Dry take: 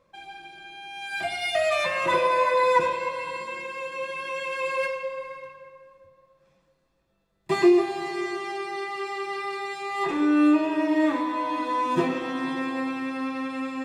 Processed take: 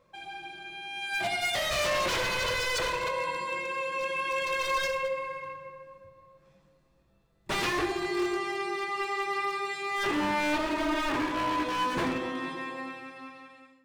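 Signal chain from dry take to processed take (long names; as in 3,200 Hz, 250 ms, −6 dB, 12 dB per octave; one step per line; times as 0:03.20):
fade-out on the ending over 2.32 s
0:04.40–0:07.65: low-shelf EQ 330 Hz +5.5 dB
wave folding −24.5 dBFS
convolution reverb, pre-delay 4 ms, DRR 6.5 dB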